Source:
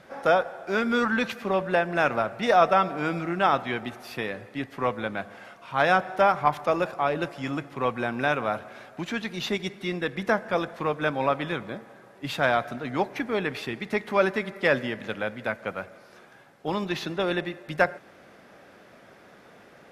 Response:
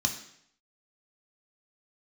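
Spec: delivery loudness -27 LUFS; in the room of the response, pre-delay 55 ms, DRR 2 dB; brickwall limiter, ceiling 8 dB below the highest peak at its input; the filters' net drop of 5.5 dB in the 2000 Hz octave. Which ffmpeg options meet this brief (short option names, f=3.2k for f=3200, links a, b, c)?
-filter_complex "[0:a]equalizer=f=2k:t=o:g=-8,alimiter=limit=-16dB:level=0:latency=1,asplit=2[a][b];[1:a]atrim=start_sample=2205,adelay=55[c];[b][c]afir=irnorm=-1:irlink=0,volume=-8dB[d];[a][d]amix=inputs=2:normalize=0,volume=0.5dB"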